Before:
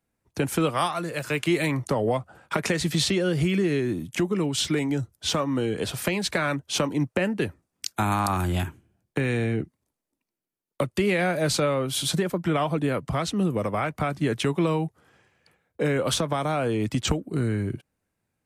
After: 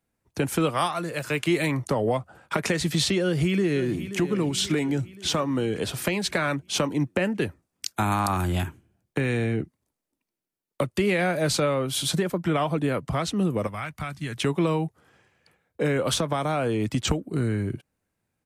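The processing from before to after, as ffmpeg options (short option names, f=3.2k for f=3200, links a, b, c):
-filter_complex "[0:a]asplit=2[a][b];[b]afade=t=in:st=3.22:d=0.01,afade=t=out:st=4.21:d=0.01,aecho=0:1:530|1060|1590|2120|2650|3180:0.251189|0.138154|0.0759846|0.0417915|0.0229853|0.0126419[c];[a][c]amix=inputs=2:normalize=0,asettb=1/sr,asplit=3[d][e][f];[d]atrim=end=13.674[g];[e]atrim=start=13.67:end=14.37,asetpts=PTS-STARTPTS,afade=t=in:d=0.004:c=qsin,afade=t=out:st=0.696:d=0.004:c=qsin,equalizer=f=440:w=0.57:g=-14.5[h];[f]atrim=start=14.366[i];[g][h]acrossfade=d=0.004:c1=hsin:c2=qsin[j];[j][i]acrossfade=d=0.004:c1=qsin:c2=hsin"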